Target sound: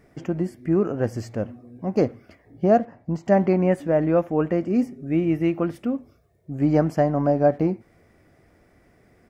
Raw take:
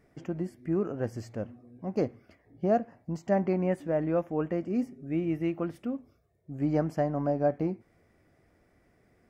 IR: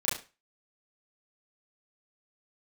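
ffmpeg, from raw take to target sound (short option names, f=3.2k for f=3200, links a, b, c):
-filter_complex "[0:a]asettb=1/sr,asplit=3[a][b][c];[a]atrim=end=2.784[d];[b]atrim=start=2.78:end=3.26,asetpts=PTS-STARTPTS,afade=t=in:d=0.004:c=qsin,afade=t=out:st=0.476:d=0.004:c=qsin,lowpass=f=2.9k:p=1[e];[c]atrim=start=3.256[f];[d][e]acrossfade=d=0.004:c1=hsin:c2=qsin[g];[g][f]acrossfade=d=0.004:c1=qsin:c2=hsin,asplit=2[h][i];[i]adelay=80,highpass=300,lowpass=3.4k,asoftclip=type=hard:threshold=-24dB,volume=-27dB[j];[h][j]amix=inputs=2:normalize=0,volume=8dB"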